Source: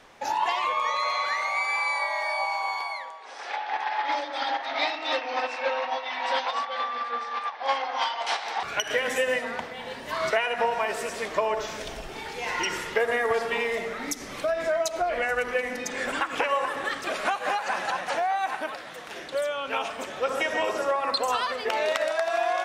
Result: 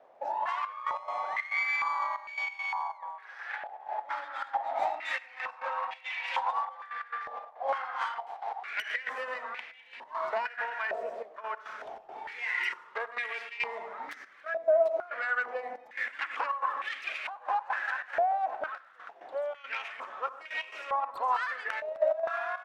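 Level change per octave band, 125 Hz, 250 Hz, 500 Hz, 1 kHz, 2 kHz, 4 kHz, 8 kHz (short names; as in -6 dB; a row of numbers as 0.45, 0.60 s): under -20 dB, -20.5 dB, -6.5 dB, -5.0 dB, -4.5 dB, -13.5 dB, under -20 dB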